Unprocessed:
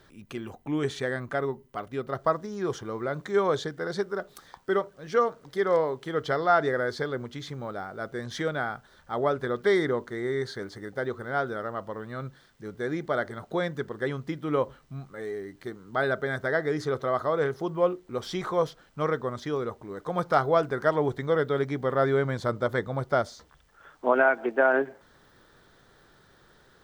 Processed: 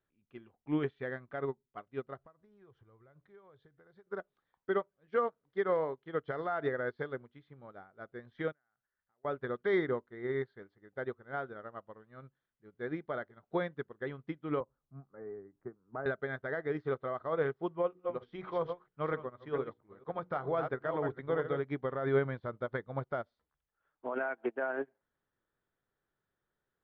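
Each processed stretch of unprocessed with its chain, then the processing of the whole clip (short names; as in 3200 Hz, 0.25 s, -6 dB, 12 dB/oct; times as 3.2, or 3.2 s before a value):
2.18–4.07 resonant low shelf 150 Hz +8 dB, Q 1.5 + compressor, threshold -36 dBFS
8.52–9.25 ladder low-pass 2100 Hz, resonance 60% + compressor 20:1, threshold -48 dBFS
14.6–16.06 LPF 1400 Hz 24 dB/oct + three-band squash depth 70%
17.73–21.64 reverse delay 0.231 s, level -8 dB + high shelf 4200 Hz -4 dB + notches 60/120/180/240/300/360/420/480 Hz
whole clip: LPF 3200 Hz 24 dB/oct; limiter -19.5 dBFS; upward expander 2.5:1, over -43 dBFS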